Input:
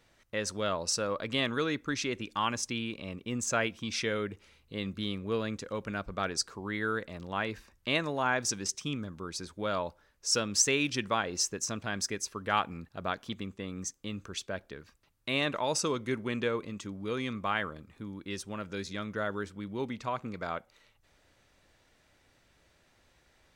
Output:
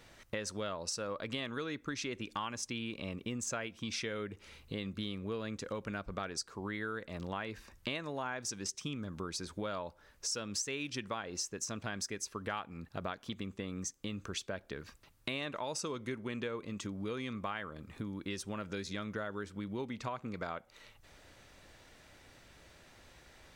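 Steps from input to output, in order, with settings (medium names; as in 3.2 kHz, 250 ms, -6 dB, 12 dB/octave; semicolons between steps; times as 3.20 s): compression 5:1, threshold -45 dBFS, peak gain reduction 21.5 dB; trim +7.5 dB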